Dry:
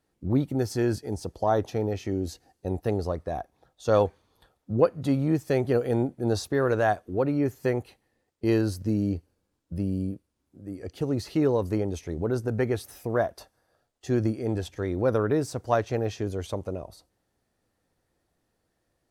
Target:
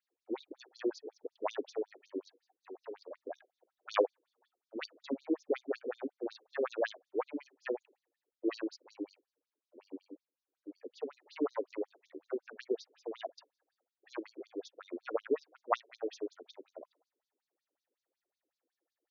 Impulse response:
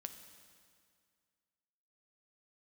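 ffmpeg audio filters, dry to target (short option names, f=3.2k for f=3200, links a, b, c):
-filter_complex "[0:a]asplit=3[a][b][c];[a]afade=t=out:st=2.66:d=0.02[d];[b]asoftclip=type=hard:threshold=-30.5dB,afade=t=in:st=2.66:d=0.02,afade=t=out:st=3.15:d=0.02[e];[c]afade=t=in:st=3.15:d=0.02[f];[d][e][f]amix=inputs=3:normalize=0,aeval=exprs='0.422*(cos(1*acos(clip(val(0)/0.422,-1,1)))-cos(1*PI/2))+0.106*(cos(3*acos(clip(val(0)/0.422,-1,1)))-cos(3*PI/2))':c=same,afftfilt=real='re*between(b*sr/1024,350*pow(5100/350,0.5+0.5*sin(2*PI*5.4*pts/sr))/1.41,350*pow(5100/350,0.5+0.5*sin(2*PI*5.4*pts/sr))*1.41)':imag='im*between(b*sr/1024,350*pow(5100/350,0.5+0.5*sin(2*PI*5.4*pts/sr))/1.41,350*pow(5100/350,0.5+0.5*sin(2*PI*5.4*pts/sr))*1.41)':win_size=1024:overlap=0.75,volume=6dB"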